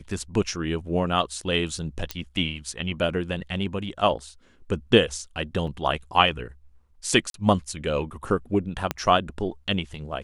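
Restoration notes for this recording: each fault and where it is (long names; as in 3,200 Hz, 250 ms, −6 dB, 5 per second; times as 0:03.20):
0:02.11: click −12 dBFS
0:05.67: drop-out 4.1 ms
0:07.30–0:07.34: drop-out 42 ms
0:08.91: click −10 dBFS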